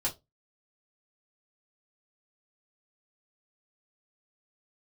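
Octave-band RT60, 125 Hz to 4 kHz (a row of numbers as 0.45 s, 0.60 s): 0.30 s, 0.25 s, 0.25 s, 0.20 s, 0.15 s, 0.15 s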